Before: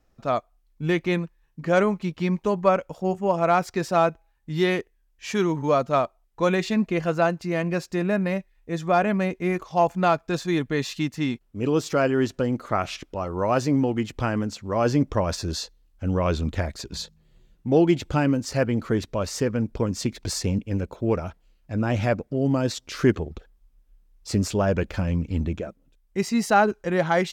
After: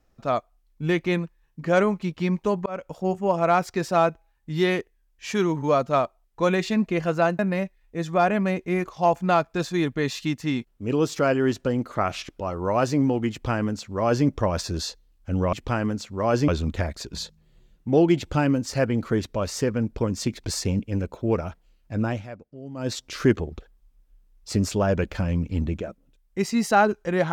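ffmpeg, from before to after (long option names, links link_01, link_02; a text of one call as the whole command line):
ffmpeg -i in.wav -filter_complex "[0:a]asplit=7[link_01][link_02][link_03][link_04][link_05][link_06][link_07];[link_01]atrim=end=2.66,asetpts=PTS-STARTPTS,afade=type=out:start_time=2.656:duration=0.004:curve=hsin[link_08];[link_02]atrim=start=2.66:end=7.392,asetpts=PTS-STARTPTS,afade=type=in:duration=0.25[link_09];[link_03]atrim=start=8.128:end=16.272[link_10];[link_04]atrim=start=14.048:end=15.002[link_11];[link_05]atrim=start=16.268:end=22.02,asetpts=PTS-STARTPTS,afade=type=out:start_time=5.572:duration=0.18:silence=0.158489[link_12];[link_06]atrim=start=22.02:end=22.54,asetpts=PTS-STARTPTS,volume=-16dB[link_13];[link_07]atrim=start=22.54,asetpts=PTS-STARTPTS,afade=type=in:duration=0.18:silence=0.158489[link_14];[link_08][link_09]concat=n=2:v=0:a=1[link_15];[link_15][link_10]acrossfade=duration=0.004:curve1=hsin:curve2=hsin[link_16];[link_16][link_11]acrossfade=duration=0.004:curve1=hsin:curve2=hsin[link_17];[link_12][link_13][link_14]concat=n=3:v=0:a=1[link_18];[link_17][link_18]acrossfade=duration=0.004:curve1=hsin:curve2=hsin" out.wav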